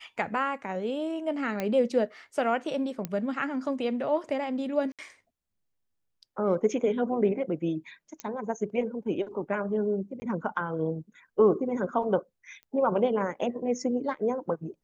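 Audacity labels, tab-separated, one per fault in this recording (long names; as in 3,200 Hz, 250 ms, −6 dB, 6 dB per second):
1.600000	1.600000	click −16 dBFS
3.050000	3.050000	click −17 dBFS
4.920000	4.990000	drop-out 67 ms
8.200000	8.200000	click −19 dBFS
10.200000	10.220000	drop-out 20 ms
12.630000	12.630000	click −35 dBFS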